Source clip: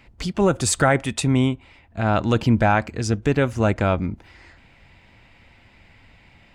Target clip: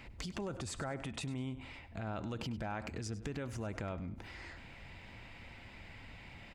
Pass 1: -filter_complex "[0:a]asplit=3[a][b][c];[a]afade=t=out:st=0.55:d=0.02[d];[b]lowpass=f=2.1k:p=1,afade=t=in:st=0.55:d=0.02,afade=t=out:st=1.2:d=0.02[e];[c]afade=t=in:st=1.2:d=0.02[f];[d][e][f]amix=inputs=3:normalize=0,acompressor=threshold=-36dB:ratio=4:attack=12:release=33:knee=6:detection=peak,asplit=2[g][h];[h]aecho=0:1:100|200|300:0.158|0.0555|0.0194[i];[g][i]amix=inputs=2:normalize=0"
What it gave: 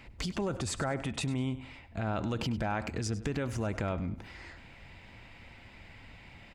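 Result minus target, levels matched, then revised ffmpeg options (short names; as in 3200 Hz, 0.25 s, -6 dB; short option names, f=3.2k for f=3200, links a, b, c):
compressor: peak gain reduction -7.5 dB
-filter_complex "[0:a]asplit=3[a][b][c];[a]afade=t=out:st=0.55:d=0.02[d];[b]lowpass=f=2.1k:p=1,afade=t=in:st=0.55:d=0.02,afade=t=out:st=1.2:d=0.02[e];[c]afade=t=in:st=1.2:d=0.02[f];[d][e][f]amix=inputs=3:normalize=0,acompressor=threshold=-46dB:ratio=4:attack=12:release=33:knee=6:detection=peak,asplit=2[g][h];[h]aecho=0:1:100|200|300:0.158|0.0555|0.0194[i];[g][i]amix=inputs=2:normalize=0"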